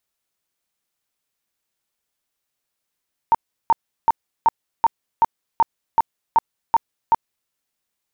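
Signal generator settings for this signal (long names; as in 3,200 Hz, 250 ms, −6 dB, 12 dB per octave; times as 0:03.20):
tone bursts 915 Hz, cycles 24, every 0.38 s, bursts 11, −10 dBFS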